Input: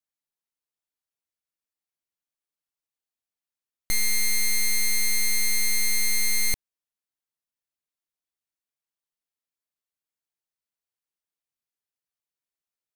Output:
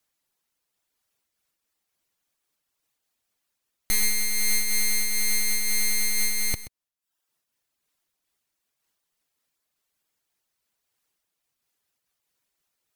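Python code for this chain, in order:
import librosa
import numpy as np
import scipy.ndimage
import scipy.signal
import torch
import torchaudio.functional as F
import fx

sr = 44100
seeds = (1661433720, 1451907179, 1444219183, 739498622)

p1 = fx.dereverb_blind(x, sr, rt60_s=0.62)
p2 = fx.fold_sine(p1, sr, drive_db=11, ceiling_db=-20.0)
p3 = p1 + (p2 * 10.0 ** (-7.5 / 20.0))
p4 = p3 + 10.0 ** (-14.0 / 20.0) * np.pad(p3, (int(128 * sr / 1000.0), 0))[:len(p3)]
p5 = fx.am_noise(p4, sr, seeds[0], hz=5.7, depth_pct=50)
y = p5 * 10.0 ** (6.5 / 20.0)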